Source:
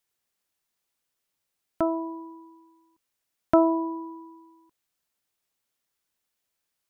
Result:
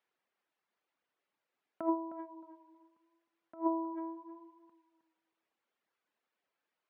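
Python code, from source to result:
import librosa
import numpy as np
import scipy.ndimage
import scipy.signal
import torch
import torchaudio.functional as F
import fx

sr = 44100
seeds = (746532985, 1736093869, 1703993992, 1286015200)

y = fx.dereverb_blind(x, sr, rt60_s=0.83)
y = fx.over_compress(y, sr, threshold_db=-29.0, ratio=-0.5)
y = fx.bandpass_edges(y, sr, low_hz=260.0, high_hz=2200.0)
y = fx.echo_tape(y, sr, ms=313, feedback_pct=24, wet_db=-10.0, lp_hz=1500.0, drive_db=22.0, wow_cents=34)
y = y * librosa.db_to_amplitude(-2.0)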